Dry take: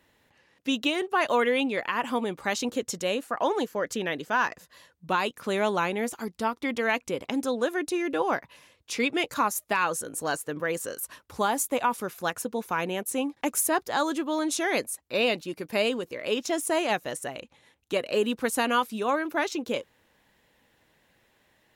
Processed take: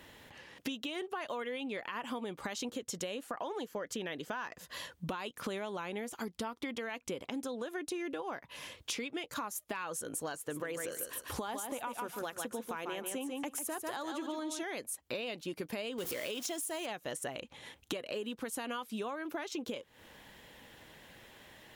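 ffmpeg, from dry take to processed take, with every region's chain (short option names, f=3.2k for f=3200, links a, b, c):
-filter_complex "[0:a]asettb=1/sr,asplit=3[a][b][c];[a]atrim=end=10.354[d];[b]atrim=start=10.35:end=14.63,asetpts=PTS-STARTPTS,afade=t=in:d=0.004:c=qsin,afade=t=out:st=4.276:d=0.004:c=qsin,bandreject=f=180:w=5.4,aecho=1:1:145|290|435:0.447|0.0849|0.0161,atrim=end_sample=188748[e];[c]atrim=start=14.626[f];[d][e]acrossfade=d=0.004:c1=hsin:c2=qsin[g];[g][f]acrossfade=d=0.004:c1=qsin:c2=hsin,asettb=1/sr,asplit=3[h][i][j];[h]atrim=end=15.984[k];[i]atrim=start=15.98:end=16.86,asetpts=PTS-STARTPTS,afade=t=in:d=0.004:c=qsin,afade=t=out:st=0.876:d=0.004:c=qsin,aeval=exprs='val(0)+0.5*0.0158*sgn(val(0))':c=same,highpass=52,highshelf=f=4.8k:g=10.5[l];[j]atrim=start=16.856[m];[k][l]acrossfade=d=0.004:c1=hsin:c2=qsin[n];[n][m]acrossfade=d=0.004:c1=qsin:c2=hsin,equalizer=f=3.2k:w=7.5:g=5,alimiter=limit=-23dB:level=0:latency=1:release=277,acompressor=threshold=-46dB:ratio=8,volume=9.5dB"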